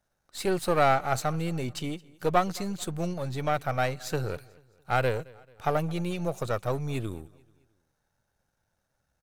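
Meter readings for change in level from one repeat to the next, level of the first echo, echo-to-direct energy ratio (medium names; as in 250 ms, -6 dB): -7.0 dB, -23.5 dB, -22.5 dB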